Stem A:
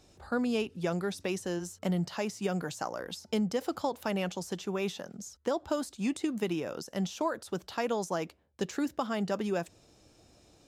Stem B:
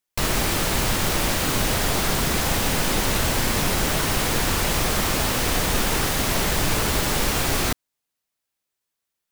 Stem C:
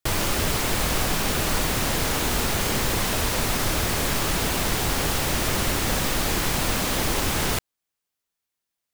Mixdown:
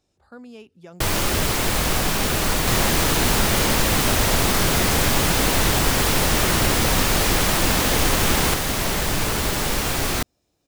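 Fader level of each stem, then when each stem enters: -11.5 dB, -0.5 dB, +2.5 dB; 0.00 s, 2.50 s, 0.95 s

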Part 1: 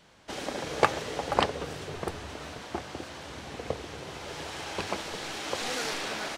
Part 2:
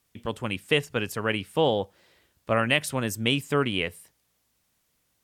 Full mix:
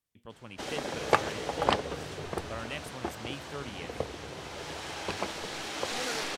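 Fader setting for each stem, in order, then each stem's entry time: -1.0 dB, -16.5 dB; 0.30 s, 0.00 s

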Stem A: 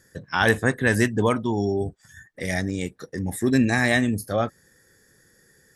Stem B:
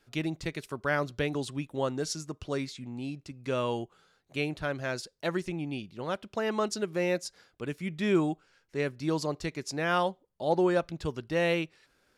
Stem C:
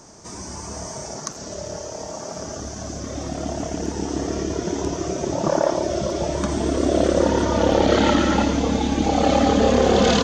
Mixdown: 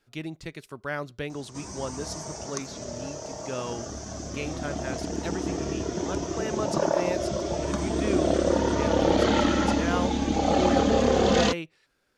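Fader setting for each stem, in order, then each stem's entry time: mute, -3.5 dB, -5.0 dB; mute, 0.00 s, 1.30 s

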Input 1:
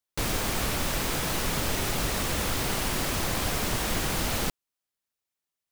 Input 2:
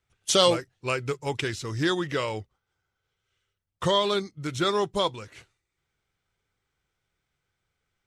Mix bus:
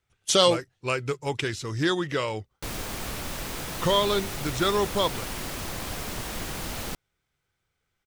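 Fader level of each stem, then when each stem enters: -5.5 dB, +0.5 dB; 2.45 s, 0.00 s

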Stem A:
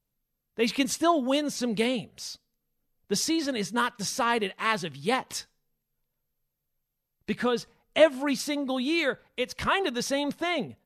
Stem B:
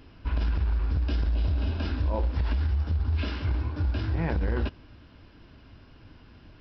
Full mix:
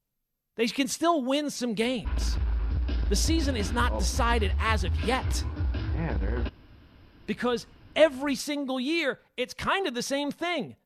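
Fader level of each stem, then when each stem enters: -1.0 dB, -2.0 dB; 0.00 s, 1.80 s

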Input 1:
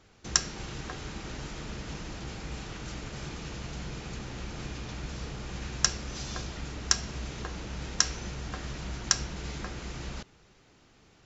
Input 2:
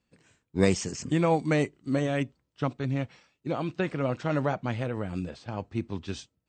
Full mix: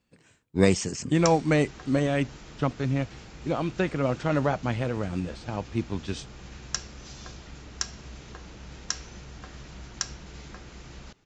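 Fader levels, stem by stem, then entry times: -6.0 dB, +2.5 dB; 0.90 s, 0.00 s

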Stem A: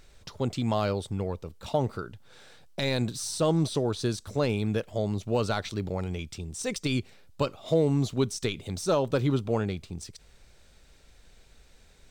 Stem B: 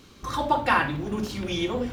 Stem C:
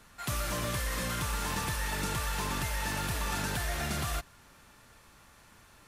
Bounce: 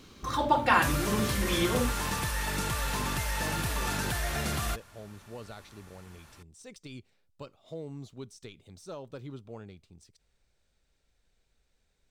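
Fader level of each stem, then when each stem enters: -17.0 dB, -1.5 dB, +1.5 dB; 0.00 s, 0.00 s, 0.55 s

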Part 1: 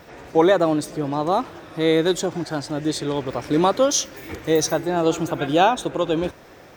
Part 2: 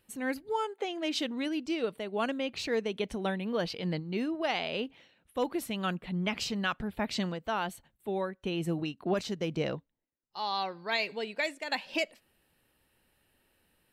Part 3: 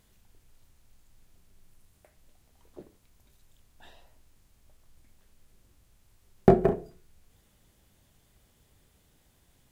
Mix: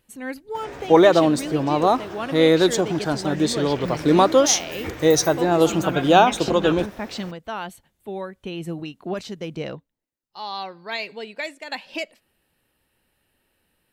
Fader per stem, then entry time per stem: +2.5 dB, +1.5 dB, -10.0 dB; 0.55 s, 0.00 s, 0.00 s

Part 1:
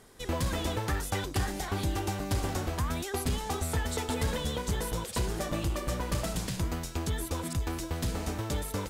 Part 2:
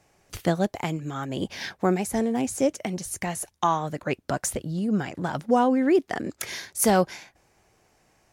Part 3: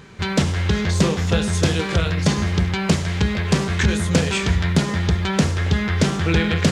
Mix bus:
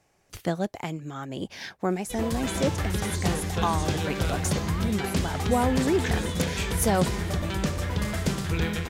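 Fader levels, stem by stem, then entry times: -1.0 dB, -4.0 dB, -10.0 dB; 1.90 s, 0.00 s, 2.25 s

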